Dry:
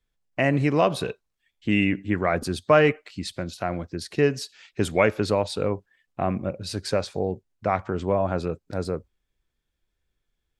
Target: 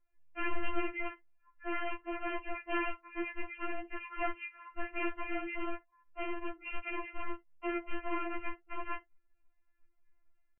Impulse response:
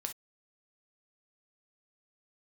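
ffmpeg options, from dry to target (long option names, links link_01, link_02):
-filter_complex "[0:a]acompressor=threshold=-35dB:ratio=2.5,aresample=11025,aeval=exprs='(mod(28.2*val(0)+1,2)-1)/28.2':channel_layout=same,aresample=44100,flanger=delay=15.5:depth=5:speed=2.5,asetrate=24046,aresample=44100,atempo=1.83401,asplit=2[link_01][link_02];[1:a]atrim=start_sample=2205[link_03];[link_02][link_03]afir=irnorm=-1:irlink=0,volume=-9dB[link_04];[link_01][link_04]amix=inputs=2:normalize=0,afftfilt=real='re*4*eq(mod(b,16),0)':imag='im*4*eq(mod(b,16),0)':win_size=2048:overlap=0.75,volume=3.5dB"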